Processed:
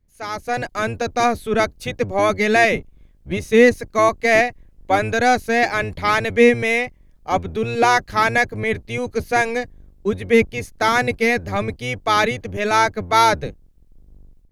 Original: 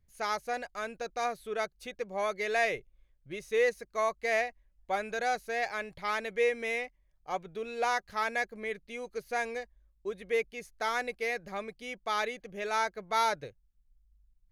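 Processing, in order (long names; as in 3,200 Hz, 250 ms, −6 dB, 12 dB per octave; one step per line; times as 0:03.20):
sub-octave generator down 1 octave, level +4 dB
automatic gain control gain up to 13 dB
level +1.5 dB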